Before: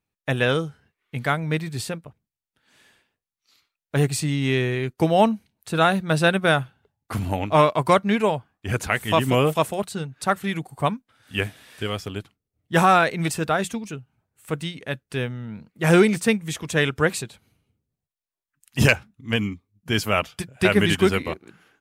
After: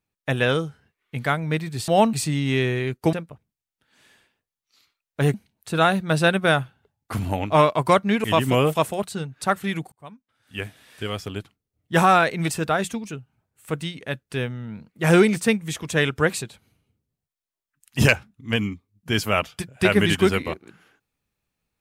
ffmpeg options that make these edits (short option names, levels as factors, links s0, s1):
-filter_complex "[0:a]asplit=7[s0][s1][s2][s3][s4][s5][s6];[s0]atrim=end=1.882[s7];[s1]atrim=start=5.088:end=5.342[s8];[s2]atrim=start=4.088:end=5.092[s9];[s3]atrim=start=1.878:end=4.092[s10];[s4]atrim=start=5.338:end=8.242[s11];[s5]atrim=start=9.038:end=10.72,asetpts=PTS-STARTPTS,afade=t=out:st=1.678:d=0.004:c=hsin[s12];[s6]atrim=start=10.72,asetpts=PTS-STARTPTS,afade=t=in:d=1.38[s13];[s7][s8]acrossfade=d=0.004:c1=hsin:c2=hsin[s14];[s14][s9]acrossfade=d=0.004:c1=hsin:c2=hsin[s15];[s15][s10]acrossfade=d=0.004:c1=hsin:c2=hsin[s16];[s16][s11]acrossfade=d=0.004:c1=hsin:c2=hsin[s17];[s12][s13]concat=n=2:v=0:a=1[s18];[s17][s18]acrossfade=d=0.004:c1=hsin:c2=hsin"